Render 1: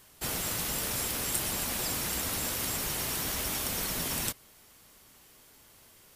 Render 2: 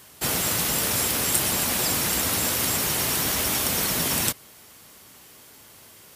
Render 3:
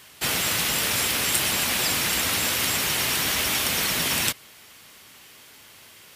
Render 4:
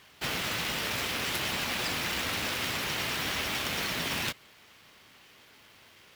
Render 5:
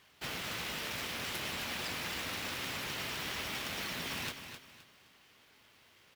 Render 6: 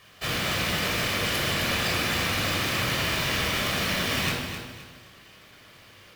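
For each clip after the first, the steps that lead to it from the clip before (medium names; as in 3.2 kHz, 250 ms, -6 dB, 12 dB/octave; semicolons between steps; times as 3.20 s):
high-pass 74 Hz; trim +8.5 dB
peaking EQ 2.6 kHz +8.5 dB 2.1 oct; trim -3 dB
median filter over 5 samples; trim -5 dB
feedback delay 260 ms, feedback 31%, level -9 dB; trim -7.5 dB
simulated room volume 2700 m³, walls furnished, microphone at 5.9 m; trim +7 dB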